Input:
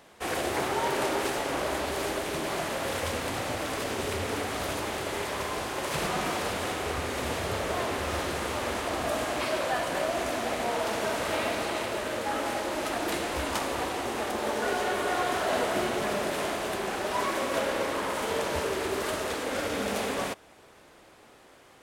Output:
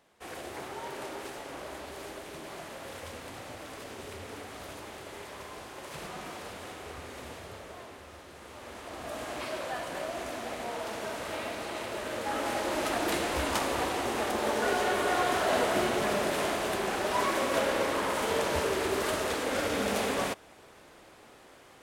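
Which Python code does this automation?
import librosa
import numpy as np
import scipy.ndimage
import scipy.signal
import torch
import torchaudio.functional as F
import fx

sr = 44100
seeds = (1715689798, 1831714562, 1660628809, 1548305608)

y = fx.gain(x, sr, db=fx.line((7.18, -11.5), (8.23, -19.0), (9.32, -7.0), (11.58, -7.0), (12.73, 0.5)))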